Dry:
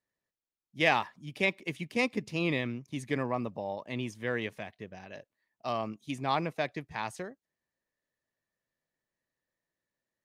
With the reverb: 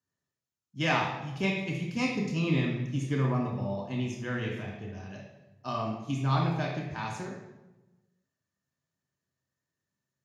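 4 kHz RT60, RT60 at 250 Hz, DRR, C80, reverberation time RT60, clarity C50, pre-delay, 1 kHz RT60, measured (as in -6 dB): 0.75 s, 1.3 s, -1.5 dB, 6.0 dB, 1.1 s, 3.5 dB, 3 ms, 0.95 s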